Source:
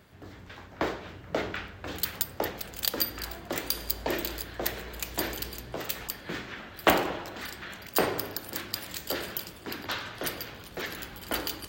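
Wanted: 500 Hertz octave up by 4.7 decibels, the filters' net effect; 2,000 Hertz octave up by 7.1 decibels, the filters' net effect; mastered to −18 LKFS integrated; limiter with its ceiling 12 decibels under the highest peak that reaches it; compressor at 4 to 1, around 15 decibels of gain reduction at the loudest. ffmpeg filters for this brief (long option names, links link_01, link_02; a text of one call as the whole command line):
ffmpeg -i in.wav -af "equalizer=frequency=500:width_type=o:gain=5.5,equalizer=frequency=2000:width_type=o:gain=8.5,acompressor=threshold=-30dB:ratio=4,volume=18.5dB,alimiter=limit=-4dB:level=0:latency=1" out.wav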